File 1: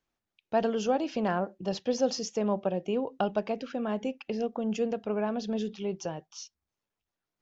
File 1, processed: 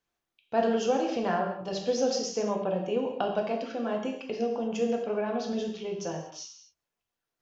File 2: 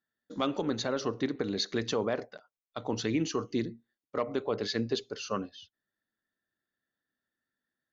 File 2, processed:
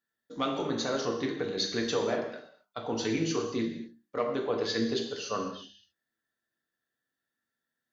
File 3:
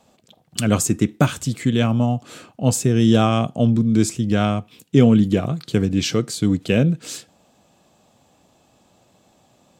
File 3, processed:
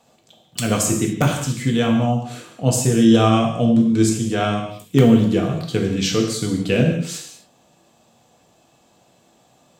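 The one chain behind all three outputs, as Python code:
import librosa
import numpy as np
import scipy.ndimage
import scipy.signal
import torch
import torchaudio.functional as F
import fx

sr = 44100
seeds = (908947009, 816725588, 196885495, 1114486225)

p1 = fx.low_shelf(x, sr, hz=240.0, db=-3.5)
p2 = fx.hum_notches(p1, sr, base_hz=50, count=8)
p3 = (np.mod(10.0 ** (4.0 / 20.0) * p2 + 1.0, 2.0) - 1.0) / 10.0 ** (4.0 / 20.0)
p4 = p2 + F.gain(torch.from_numpy(p3), -5.0).numpy()
p5 = fx.rev_gated(p4, sr, seeds[0], gate_ms=280, shape='falling', drr_db=1.0)
y = F.gain(torch.from_numpy(p5), -4.5).numpy()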